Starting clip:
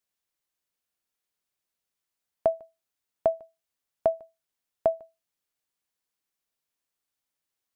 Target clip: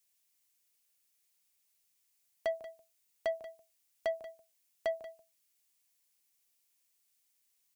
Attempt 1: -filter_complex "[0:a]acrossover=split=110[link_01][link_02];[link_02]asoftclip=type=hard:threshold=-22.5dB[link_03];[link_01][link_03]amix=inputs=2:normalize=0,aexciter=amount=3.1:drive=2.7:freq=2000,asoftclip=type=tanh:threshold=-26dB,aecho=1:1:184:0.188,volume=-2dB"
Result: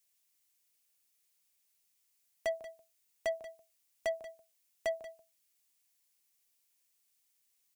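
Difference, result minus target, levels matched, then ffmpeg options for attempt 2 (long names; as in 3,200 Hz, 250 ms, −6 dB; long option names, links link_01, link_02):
hard clipping: distortion +25 dB
-filter_complex "[0:a]acrossover=split=110[link_01][link_02];[link_02]asoftclip=type=hard:threshold=-13dB[link_03];[link_01][link_03]amix=inputs=2:normalize=0,aexciter=amount=3.1:drive=2.7:freq=2000,asoftclip=type=tanh:threshold=-26dB,aecho=1:1:184:0.188,volume=-2dB"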